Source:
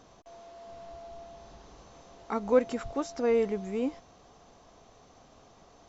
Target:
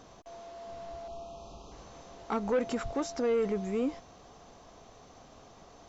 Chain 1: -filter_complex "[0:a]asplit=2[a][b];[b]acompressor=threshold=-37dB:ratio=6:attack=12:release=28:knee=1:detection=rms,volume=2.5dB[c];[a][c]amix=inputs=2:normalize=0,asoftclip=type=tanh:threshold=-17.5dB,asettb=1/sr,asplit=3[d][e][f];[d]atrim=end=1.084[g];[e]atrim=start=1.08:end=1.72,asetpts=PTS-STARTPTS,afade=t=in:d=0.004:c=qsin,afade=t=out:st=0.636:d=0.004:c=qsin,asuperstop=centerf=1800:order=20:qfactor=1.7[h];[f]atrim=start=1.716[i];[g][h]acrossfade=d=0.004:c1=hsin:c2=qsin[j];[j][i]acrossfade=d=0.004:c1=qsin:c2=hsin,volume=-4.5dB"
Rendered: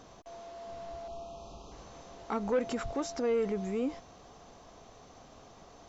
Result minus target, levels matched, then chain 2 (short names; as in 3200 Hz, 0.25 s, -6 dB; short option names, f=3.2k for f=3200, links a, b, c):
compressor: peak gain reduction +6 dB
-filter_complex "[0:a]asplit=2[a][b];[b]acompressor=threshold=-30dB:ratio=6:attack=12:release=28:knee=1:detection=rms,volume=2.5dB[c];[a][c]amix=inputs=2:normalize=0,asoftclip=type=tanh:threshold=-17.5dB,asettb=1/sr,asplit=3[d][e][f];[d]atrim=end=1.084[g];[e]atrim=start=1.08:end=1.72,asetpts=PTS-STARTPTS,afade=t=in:d=0.004:c=qsin,afade=t=out:st=0.636:d=0.004:c=qsin,asuperstop=centerf=1800:order=20:qfactor=1.7[h];[f]atrim=start=1.716[i];[g][h]acrossfade=d=0.004:c1=hsin:c2=qsin[j];[j][i]acrossfade=d=0.004:c1=qsin:c2=hsin,volume=-4.5dB"